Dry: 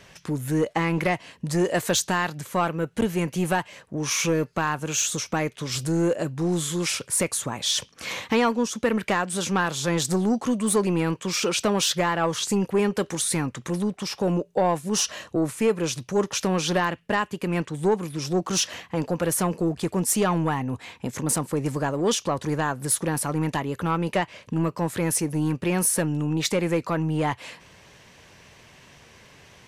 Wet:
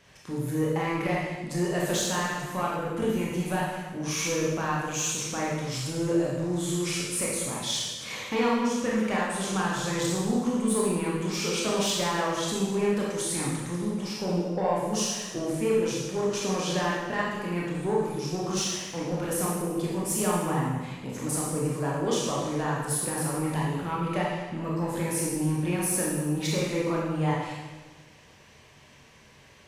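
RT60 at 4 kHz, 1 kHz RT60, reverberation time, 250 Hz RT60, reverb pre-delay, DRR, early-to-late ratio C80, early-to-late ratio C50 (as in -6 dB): 1.2 s, 1.2 s, 1.3 s, 1.5 s, 22 ms, -5.0 dB, 2.5 dB, -0.5 dB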